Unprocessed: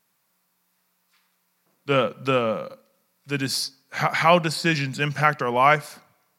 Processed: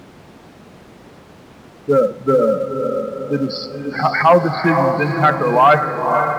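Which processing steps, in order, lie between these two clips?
adaptive Wiener filter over 9 samples
high-shelf EQ 3,700 Hz −10.5 dB
gate on every frequency bin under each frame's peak −10 dB strong
on a send: feedback delay with all-pass diffusion 521 ms, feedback 43%, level −6 dB
on the sum: four-comb reverb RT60 0.69 s, combs from 28 ms, DRR 16 dB
in parallel at −9.5 dB: floating-point word with a short mantissa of 2 bits
on the sum: sine wavefolder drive 8 dB, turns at 1 dBFS
background noise brown −26 dBFS
high-pass filter 180 Hz 12 dB per octave
high-shelf EQ 7,600 Hz −7.5 dB
level −4.5 dB

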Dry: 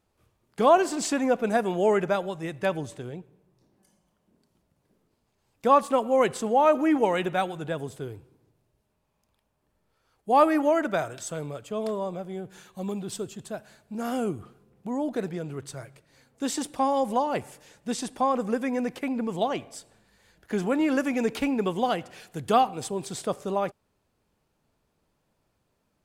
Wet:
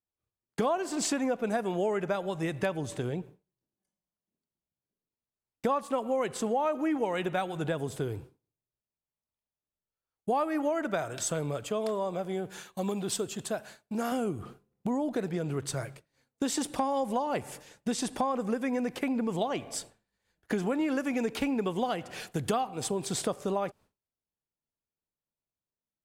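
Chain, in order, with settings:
downward expander −46 dBFS
0:11.68–0:14.12: low-shelf EQ 250 Hz −8 dB
downward compressor 5 to 1, threshold −35 dBFS, peak gain reduction 19 dB
level +7 dB

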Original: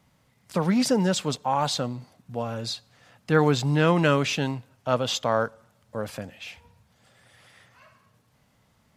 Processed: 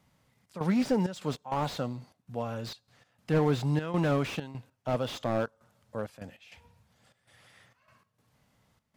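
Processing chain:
gate pattern "xxx.xxx.x.x" 99 BPM −12 dB
slew-rate limiting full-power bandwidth 67 Hz
level −4 dB

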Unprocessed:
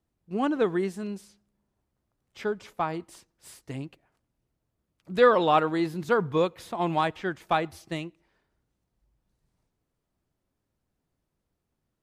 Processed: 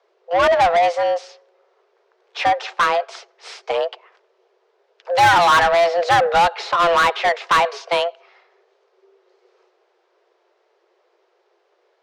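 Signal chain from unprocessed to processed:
low-pass filter 5,300 Hz 24 dB per octave
frequency shifter +340 Hz
mid-hump overdrive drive 24 dB, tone 4,200 Hz, clips at −9.5 dBFS
level +2.5 dB

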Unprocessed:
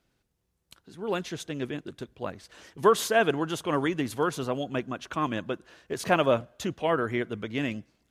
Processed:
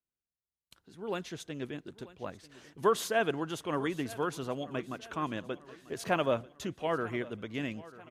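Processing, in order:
noise gate with hold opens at −50 dBFS
repeating echo 941 ms, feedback 51%, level −19 dB
level −6 dB

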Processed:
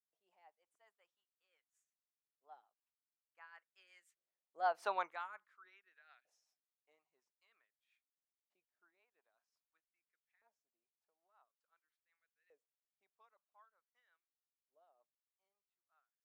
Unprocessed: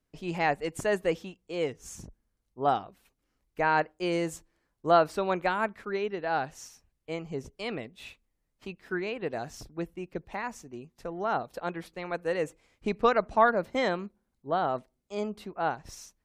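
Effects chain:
source passing by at 0:04.93, 21 m/s, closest 1.2 metres
auto-filter high-pass saw up 0.48 Hz 560–2,000 Hz
rotating-speaker cabinet horn 5.5 Hz
level −3.5 dB

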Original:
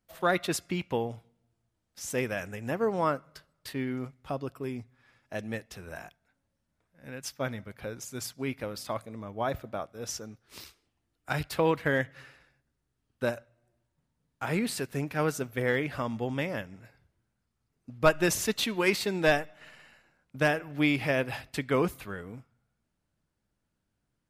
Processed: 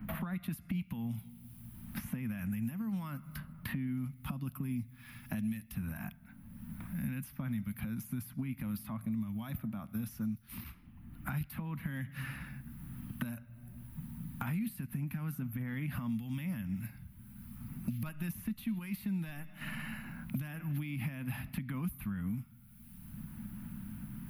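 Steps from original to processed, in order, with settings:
downward compressor 4 to 1, threshold −39 dBFS, peak gain reduction 18.5 dB
high-shelf EQ 7,900 Hz +12 dB
brickwall limiter −35 dBFS, peak gain reduction 11 dB
drawn EQ curve 130 Hz 0 dB, 220 Hz +6 dB, 420 Hz −29 dB, 1,000 Hz −12 dB, 1,600 Hz −13 dB, 2,500 Hz −11 dB, 5,300 Hz −23 dB, 7,800 Hz −26 dB, 11,000 Hz −6 dB
multiband upward and downward compressor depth 100%
level +10.5 dB

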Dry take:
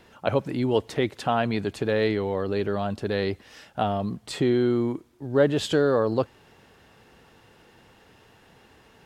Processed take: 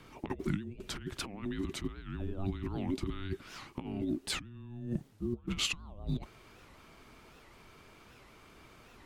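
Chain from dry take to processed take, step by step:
high-pass filter 98 Hz 12 dB per octave, from 0:05.48 310 Hz
compressor whose output falls as the input rises −30 dBFS, ratio −0.5
frequency shifter −480 Hz
wow of a warped record 78 rpm, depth 250 cents
level −6 dB

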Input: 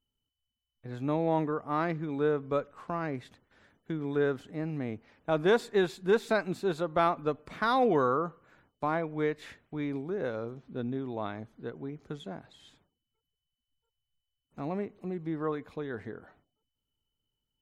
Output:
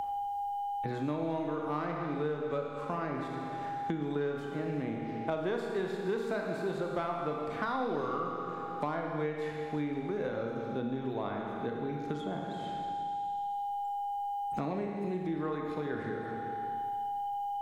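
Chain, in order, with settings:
steady tone 810 Hz −47 dBFS
in parallel at −6.5 dB: soft clipping −27 dBFS, distortion −9 dB
on the sum: four-comb reverb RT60 1.6 s, combs from 27 ms, DRR 1 dB
multiband upward and downward compressor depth 100%
level −8.5 dB

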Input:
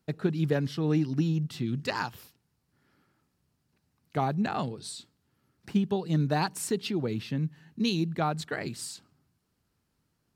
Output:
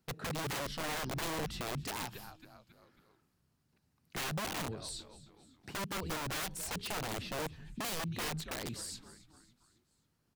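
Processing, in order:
echo with shifted repeats 273 ms, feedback 49%, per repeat −120 Hz, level −19 dB
wrap-around overflow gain 26.5 dB
brickwall limiter −30.5 dBFS, peak gain reduction 4 dB
level −2 dB

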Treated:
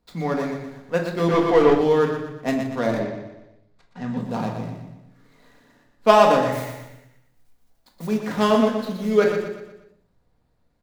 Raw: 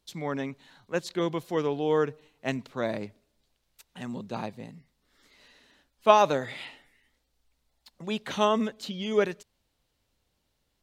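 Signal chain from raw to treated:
running median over 15 samples
repeating echo 120 ms, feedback 44%, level −7 dB
0:01.28–0:01.75: mid-hump overdrive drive 20 dB, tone 2,500 Hz, clips at −14.5 dBFS
0:02.99–0:04.17: low-pass filter 5,200 Hz 12 dB per octave
0:06.52–0:08.07: noise that follows the level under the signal 11 dB
rectangular room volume 630 cubic metres, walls furnished, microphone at 1.8 metres
level +5 dB

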